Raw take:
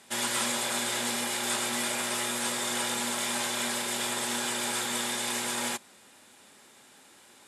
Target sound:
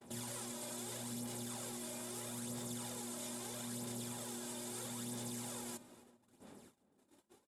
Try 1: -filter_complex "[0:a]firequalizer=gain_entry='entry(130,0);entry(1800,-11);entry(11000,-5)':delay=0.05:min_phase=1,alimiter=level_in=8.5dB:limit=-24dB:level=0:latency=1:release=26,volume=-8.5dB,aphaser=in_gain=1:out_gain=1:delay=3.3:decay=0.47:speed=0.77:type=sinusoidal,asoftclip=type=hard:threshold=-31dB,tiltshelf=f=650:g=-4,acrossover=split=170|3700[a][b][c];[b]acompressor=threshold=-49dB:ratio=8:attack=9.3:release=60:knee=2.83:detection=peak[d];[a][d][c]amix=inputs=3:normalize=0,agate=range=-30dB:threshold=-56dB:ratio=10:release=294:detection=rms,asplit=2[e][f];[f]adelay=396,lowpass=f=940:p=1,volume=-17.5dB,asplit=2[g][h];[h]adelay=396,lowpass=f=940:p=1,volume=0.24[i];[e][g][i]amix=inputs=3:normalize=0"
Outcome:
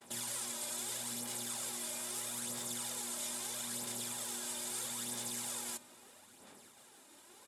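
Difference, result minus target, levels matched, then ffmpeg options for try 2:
500 Hz band -7.0 dB
-filter_complex "[0:a]firequalizer=gain_entry='entry(130,0);entry(1800,-11);entry(11000,-5)':delay=0.05:min_phase=1,alimiter=level_in=8.5dB:limit=-24dB:level=0:latency=1:release=26,volume=-8.5dB,aphaser=in_gain=1:out_gain=1:delay=3.3:decay=0.47:speed=0.77:type=sinusoidal,asoftclip=type=hard:threshold=-31dB,tiltshelf=f=650:g=3,acrossover=split=170|3700[a][b][c];[b]acompressor=threshold=-49dB:ratio=8:attack=9.3:release=60:knee=2.83:detection=peak[d];[a][d][c]amix=inputs=3:normalize=0,agate=range=-30dB:threshold=-56dB:ratio=10:release=294:detection=rms,asplit=2[e][f];[f]adelay=396,lowpass=f=940:p=1,volume=-17.5dB,asplit=2[g][h];[h]adelay=396,lowpass=f=940:p=1,volume=0.24[i];[e][g][i]amix=inputs=3:normalize=0"

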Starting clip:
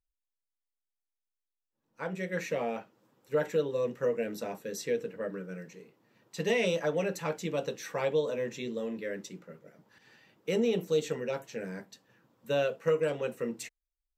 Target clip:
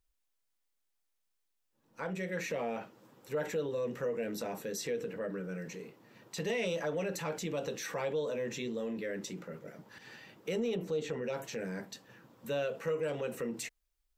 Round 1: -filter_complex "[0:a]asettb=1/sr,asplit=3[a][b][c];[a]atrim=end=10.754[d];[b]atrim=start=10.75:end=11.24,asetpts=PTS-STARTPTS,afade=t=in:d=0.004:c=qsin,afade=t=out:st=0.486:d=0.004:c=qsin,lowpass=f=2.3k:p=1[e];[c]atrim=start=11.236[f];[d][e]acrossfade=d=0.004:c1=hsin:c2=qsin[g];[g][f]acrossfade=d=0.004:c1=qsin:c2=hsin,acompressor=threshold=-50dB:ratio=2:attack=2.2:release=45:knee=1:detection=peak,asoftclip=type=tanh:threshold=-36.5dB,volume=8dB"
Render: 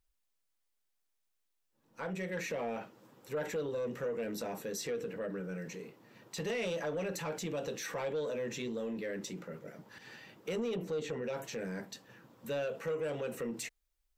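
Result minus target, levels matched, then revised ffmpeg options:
soft clip: distortion +20 dB
-filter_complex "[0:a]asettb=1/sr,asplit=3[a][b][c];[a]atrim=end=10.754[d];[b]atrim=start=10.75:end=11.24,asetpts=PTS-STARTPTS,afade=t=in:d=0.004:c=qsin,afade=t=out:st=0.486:d=0.004:c=qsin,lowpass=f=2.3k:p=1[e];[c]atrim=start=11.236[f];[d][e]acrossfade=d=0.004:c1=hsin:c2=qsin[g];[g][f]acrossfade=d=0.004:c1=qsin:c2=hsin,acompressor=threshold=-50dB:ratio=2:attack=2.2:release=45:knee=1:detection=peak,asoftclip=type=tanh:threshold=-25dB,volume=8dB"

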